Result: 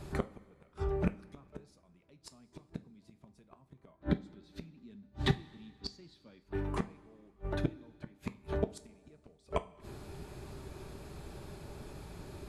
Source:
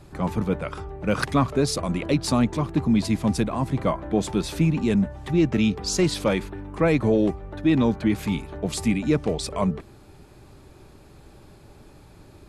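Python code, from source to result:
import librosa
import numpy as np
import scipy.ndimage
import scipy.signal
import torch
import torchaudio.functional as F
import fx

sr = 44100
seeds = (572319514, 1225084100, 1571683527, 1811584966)

y = fx.graphic_eq_15(x, sr, hz=(100, 250, 1600, 4000, 10000), db=(5, 12, 4, 10, -6), at=(3.93, 6.4))
y = fx.gate_flip(y, sr, shuts_db=-18.0, range_db=-41)
y = fx.rev_double_slope(y, sr, seeds[0], early_s=0.27, late_s=2.0, knee_db=-18, drr_db=9.5)
y = y * librosa.db_to_amplitude(1.0)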